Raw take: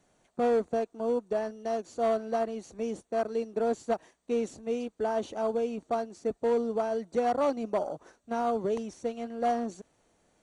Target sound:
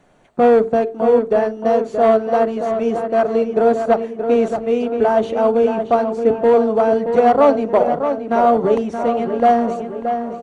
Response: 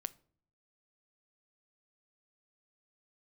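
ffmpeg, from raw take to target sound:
-filter_complex "[0:a]bandreject=f=50:t=h:w=6,bandreject=f=100:t=h:w=6,bandreject=f=150:t=h:w=6,bandreject=f=200:t=h:w=6,bandreject=f=250:t=h:w=6,bandreject=f=300:t=h:w=6,bandreject=f=350:t=h:w=6,bandreject=f=400:t=h:w=6,bandreject=f=450:t=h:w=6,asplit=2[s0][s1];[s1]adelay=625,lowpass=f=3200:p=1,volume=0.422,asplit=2[s2][s3];[s3]adelay=625,lowpass=f=3200:p=1,volume=0.51,asplit=2[s4][s5];[s5]adelay=625,lowpass=f=3200:p=1,volume=0.51,asplit=2[s6][s7];[s7]adelay=625,lowpass=f=3200:p=1,volume=0.51,asplit=2[s8][s9];[s9]adelay=625,lowpass=f=3200:p=1,volume=0.51,asplit=2[s10][s11];[s11]adelay=625,lowpass=f=3200:p=1,volume=0.51[s12];[s0][s2][s4][s6][s8][s10][s12]amix=inputs=7:normalize=0,asplit=2[s13][s14];[1:a]atrim=start_sample=2205,lowpass=3500[s15];[s14][s15]afir=irnorm=-1:irlink=0,volume=2.51[s16];[s13][s16]amix=inputs=2:normalize=0,volume=1.78"

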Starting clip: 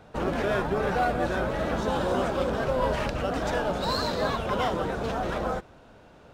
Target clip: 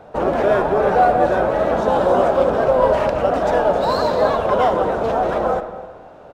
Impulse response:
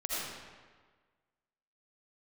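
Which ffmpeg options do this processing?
-filter_complex "[0:a]equalizer=f=640:t=o:w=1.9:g=11.5,aecho=1:1:264:0.0944,asplit=2[s0][s1];[1:a]atrim=start_sample=2205,lowpass=3100[s2];[s1][s2]afir=irnorm=-1:irlink=0,volume=0.224[s3];[s0][s3]amix=inputs=2:normalize=0"

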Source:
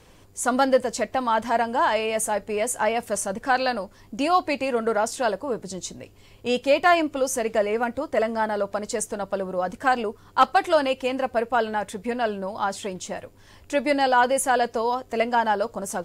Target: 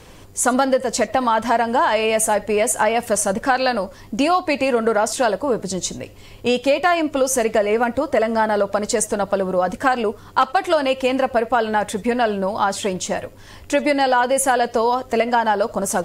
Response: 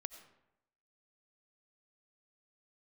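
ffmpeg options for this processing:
-filter_complex "[0:a]acompressor=threshold=0.0708:ratio=5,asplit=2[s0][s1];[1:a]atrim=start_sample=2205,atrim=end_sample=3969[s2];[s1][s2]afir=irnorm=-1:irlink=0,volume=2.82[s3];[s0][s3]amix=inputs=2:normalize=0"

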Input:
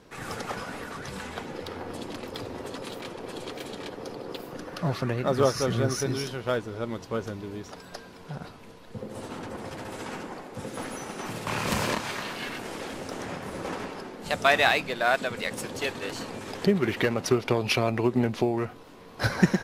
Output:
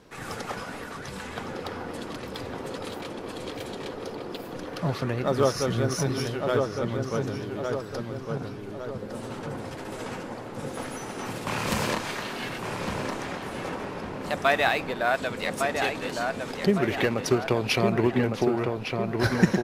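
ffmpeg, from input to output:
-filter_complex "[0:a]asettb=1/sr,asplit=3[s0][s1][s2];[s0]atrim=end=13.694[s3];[s1]atrim=start=13.69:end=15.16,asetpts=PTS-STARTPTS,afade=t=in:d=0.004:c=qsin,afade=t=out:st=1.466:d=0.004:c=qsin,equalizer=f=5500:w=0.38:g=-5[s4];[s2]atrim=start=15.156[s5];[s3][s4]acrossfade=d=0.004:c1=hsin:c2=qsin[s6];[s6][s5]acrossfade=d=0.004:c1=qsin:c2=hsin,asplit=2[s7][s8];[s8]adelay=1157,lowpass=f=2200:p=1,volume=0.631,asplit=2[s9][s10];[s10]adelay=1157,lowpass=f=2200:p=1,volume=0.51,asplit=2[s11][s12];[s12]adelay=1157,lowpass=f=2200:p=1,volume=0.51,asplit=2[s13][s14];[s14]adelay=1157,lowpass=f=2200:p=1,volume=0.51,asplit=2[s15][s16];[s16]adelay=1157,lowpass=f=2200:p=1,volume=0.51,asplit=2[s17][s18];[s18]adelay=1157,lowpass=f=2200:p=1,volume=0.51,asplit=2[s19][s20];[s20]adelay=1157,lowpass=f=2200:p=1,volume=0.51[s21];[s9][s11][s13][s15][s17][s19][s21]amix=inputs=7:normalize=0[s22];[s7][s22]amix=inputs=2:normalize=0"

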